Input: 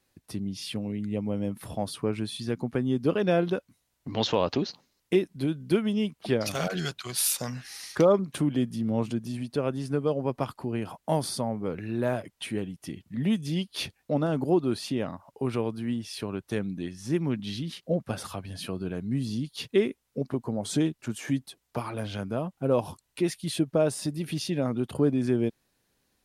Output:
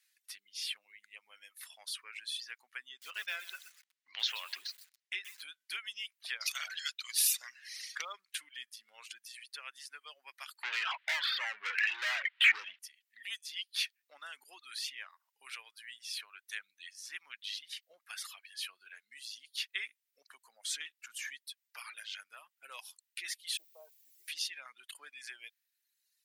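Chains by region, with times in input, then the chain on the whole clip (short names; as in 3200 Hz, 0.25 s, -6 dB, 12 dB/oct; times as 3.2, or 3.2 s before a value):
2.89–5.42 air absorption 65 m + lo-fi delay 0.126 s, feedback 35%, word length 7-bit, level -7 dB
10.63–12.79 steep low-pass 3500 Hz + overdrive pedal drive 36 dB, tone 1400 Hz, clips at -11.5 dBFS + three-band squash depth 70%
23.57–24.28 LPF 1100 Hz 24 dB/oct + requantised 10-bit, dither triangular + fixed phaser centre 560 Hz, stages 4
whole clip: reverb removal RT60 1.5 s; Chebyshev high-pass 1800 Hz, order 3; dynamic EQ 9300 Hz, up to -4 dB, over -53 dBFS, Q 1.2; gain +1.5 dB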